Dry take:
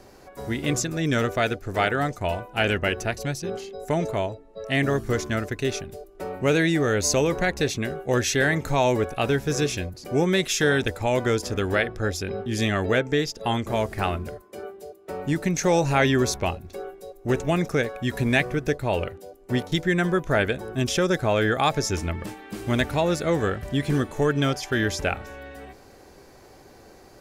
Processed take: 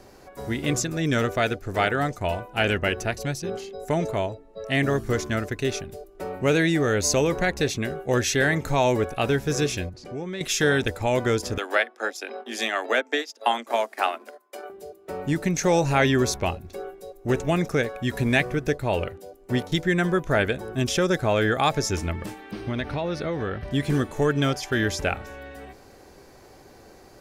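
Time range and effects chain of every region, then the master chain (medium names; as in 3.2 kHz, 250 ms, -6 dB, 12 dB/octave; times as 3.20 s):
9.89–10.41 s: compression 2:1, threshold -37 dBFS + distance through air 75 m
11.58–14.70 s: transient shaper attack +5 dB, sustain -10 dB + steep high-pass 230 Hz 96 dB/octave + resonant low shelf 530 Hz -6.5 dB, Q 1.5
22.51–23.71 s: compression 5:1, threshold -23 dBFS + Savitzky-Golay filter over 15 samples
whole clip: none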